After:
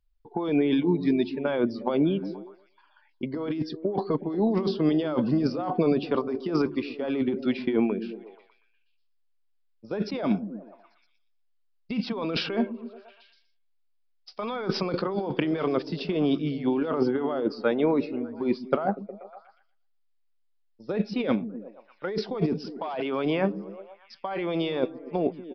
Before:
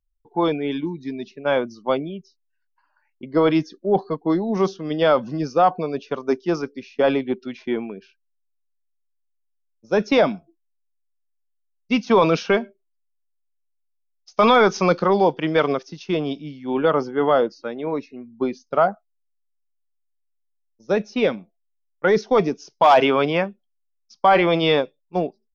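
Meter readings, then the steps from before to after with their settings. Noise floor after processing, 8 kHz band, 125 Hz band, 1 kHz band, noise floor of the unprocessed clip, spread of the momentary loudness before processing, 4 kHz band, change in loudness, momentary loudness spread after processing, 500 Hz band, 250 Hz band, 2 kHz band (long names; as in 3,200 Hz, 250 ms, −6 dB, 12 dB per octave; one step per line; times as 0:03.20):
−67 dBFS, can't be measured, −2.5 dB, −13.0 dB, −72 dBFS, 13 LU, −7.5 dB, −6.5 dB, 13 LU, −8.0 dB, −1.5 dB, −11.0 dB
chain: dynamic equaliser 320 Hz, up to +5 dB, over −30 dBFS, Q 1.3
compressor whose output falls as the input rises −24 dBFS, ratio −1
on a send: echo through a band-pass that steps 120 ms, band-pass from 180 Hz, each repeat 0.7 octaves, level −9.5 dB
on the sum: downsampling to 11,025 Hz
level −2 dB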